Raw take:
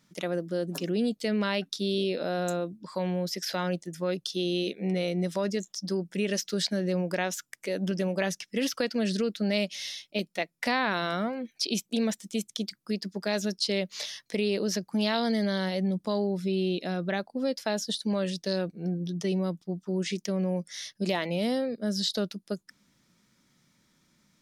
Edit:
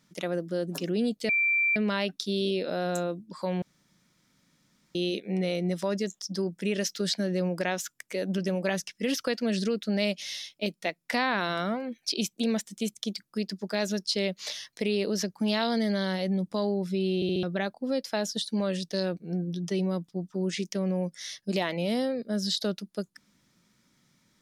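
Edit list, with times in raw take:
1.29 add tone 2350 Hz -21.5 dBFS 0.47 s
3.15–4.48 room tone
16.68 stutter in place 0.07 s, 4 plays

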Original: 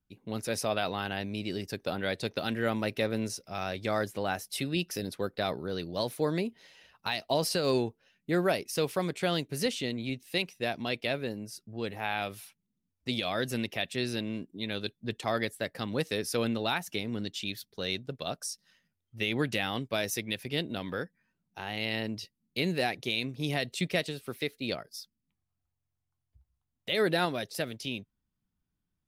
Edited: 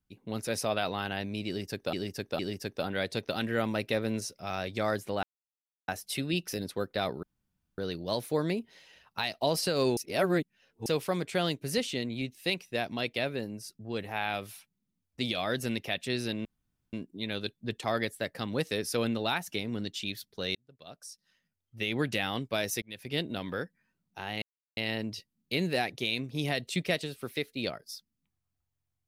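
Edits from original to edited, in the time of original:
1.47–1.93 loop, 3 plays
4.31 insert silence 0.65 s
5.66 insert room tone 0.55 s
7.85–8.74 reverse
14.33 insert room tone 0.48 s
17.95–19.49 fade in
20.22–20.55 fade in
21.82 insert silence 0.35 s

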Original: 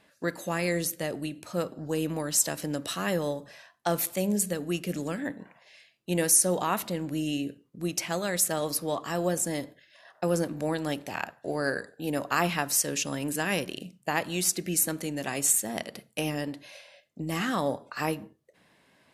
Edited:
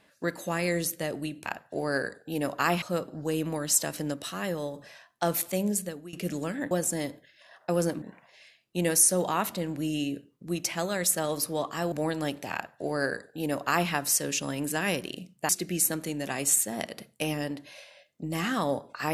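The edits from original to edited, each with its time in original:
2.78–3.38 gain -3.5 dB
4.09–4.77 fade out equal-power, to -20.5 dB
9.25–10.56 move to 5.35
11.18–12.54 copy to 1.46
14.13–14.46 cut

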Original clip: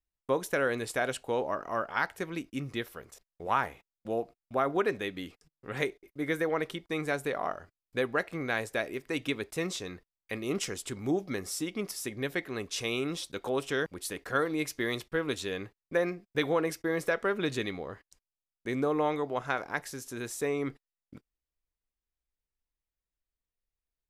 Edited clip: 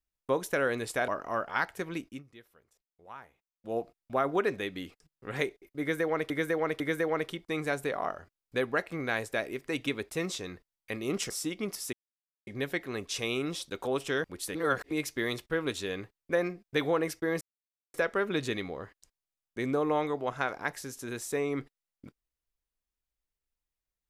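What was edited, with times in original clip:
1.08–1.49 cut
2.46–4.18 dip -18.5 dB, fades 0.18 s
6.21–6.71 loop, 3 plays
10.71–11.46 cut
12.09 insert silence 0.54 s
14.17–14.53 reverse
17.03 insert silence 0.53 s

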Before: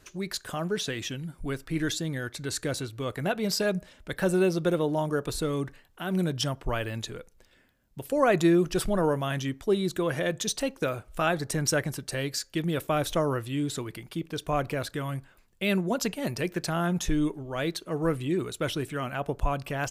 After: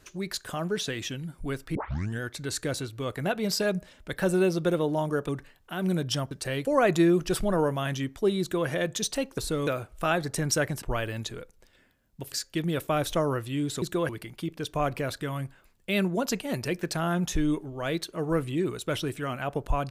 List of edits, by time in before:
1.75 tape start 0.46 s
5.29–5.58 move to 10.83
6.6–8.1 swap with 11.98–12.32
9.86–10.13 copy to 13.82

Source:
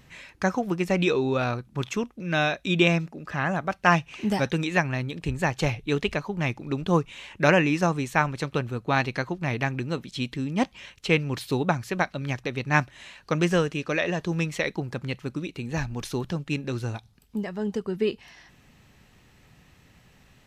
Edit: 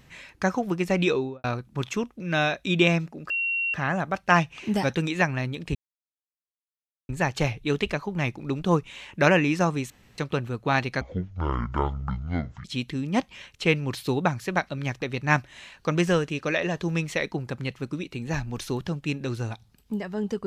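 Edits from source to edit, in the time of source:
1.1–1.44 studio fade out
3.3 add tone 2740 Hz -23.5 dBFS 0.44 s
5.31 insert silence 1.34 s
8.12–8.4 room tone
9.23–10.08 speed 52%

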